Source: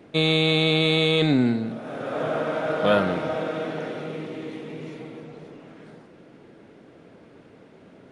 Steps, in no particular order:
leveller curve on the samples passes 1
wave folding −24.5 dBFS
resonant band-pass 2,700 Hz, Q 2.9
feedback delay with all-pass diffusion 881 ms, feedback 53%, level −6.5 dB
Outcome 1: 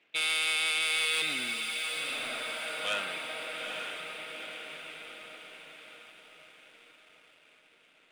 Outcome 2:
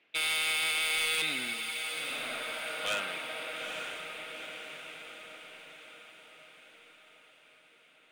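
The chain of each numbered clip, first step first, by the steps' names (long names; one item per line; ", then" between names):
resonant band-pass, then wave folding, then feedback delay with all-pass diffusion, then leveller curve on the samples
resonant band-pass, then leveller curve on the samples, then wave folding, then feedback delay with all-pass diffusion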